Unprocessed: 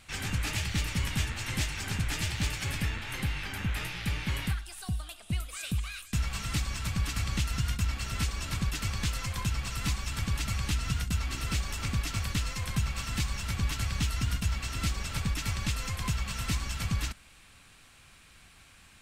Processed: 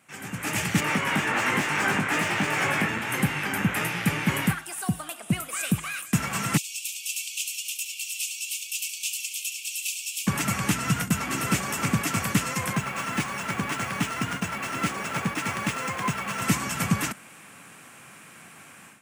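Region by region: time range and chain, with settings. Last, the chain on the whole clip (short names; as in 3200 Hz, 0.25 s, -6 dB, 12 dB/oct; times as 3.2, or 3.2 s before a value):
0.8–2.89 compressor, threshold -32 dBFS + overdrive pedal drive 18 dB, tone 1500 Hz, clips at -20.5 dBFS + doubler 20 ms -5 dB
6.57–10.27 steep high-pass 2500 Hz 96 dB/oct + tapped delay 70/314 ms -10/-5.5 dB
12.73–16.42 tone controls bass -7 dB, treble -3 dB + decimation joined by straight lines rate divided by 3×
whole clip: HPF 150 Hz 24 dB/oct; bell 4100 Hz -14 dB 1 oct; AGC gain up to 14 dB; gain -1 dB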